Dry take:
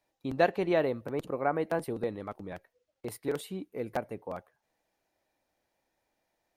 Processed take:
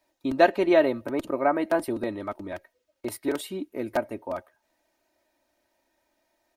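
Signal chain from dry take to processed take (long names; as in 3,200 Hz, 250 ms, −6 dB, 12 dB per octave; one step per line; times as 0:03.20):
low-shelf EQ 88 Hz −6.5 dB
comb filter 3.2 ms, depth 69%
level +5 dB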